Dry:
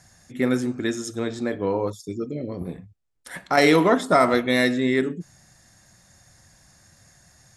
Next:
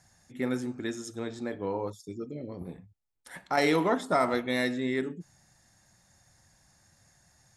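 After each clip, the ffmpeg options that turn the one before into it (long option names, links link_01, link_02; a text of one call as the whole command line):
ffmpeg -i in.wav -af "equalizer=frequency=860:width=7.5:gain=6.5,volume=-8.5dB" out.wav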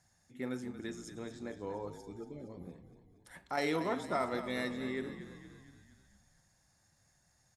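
ffmpeg -i in.wav -filter_complex "[0:a]asplit=7[link_01][link_02][link_03][link_04][link_05][link_06][link_07];[link_02]adelay=233,afreqshift=-39,volume=-11.5dB[link_08];[link_03]adelay=466,afreqshift=-78,volume=-16.4dB[link_09];[link_04]adelay=699,afreqshift=-117,volume=-21.3dB[link_10];[link_05]adelay=932,afreqshift=-156,volume=-26.1dB[link_11];[link_06]adelay=1165,afreqshift=-195,volume=-31dB[link_12];[link_07]adelay=1398,afreqshift=-234,volume=-35.9dB[link_13];[link_01][link_08][link_09][link_10][link_11][link_12][link_13]amix=inputs=7:normalize=0,volume=-8.5dB" out.wav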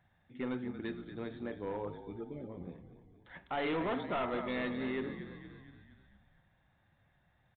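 ffmpeg -i in.wav -af "aresample=16000,volume=33dB,asoftclip=hard,volume=-33dB,aresample=44100,aresample=8000,aresample=44100,volume=2.5dB" out.wav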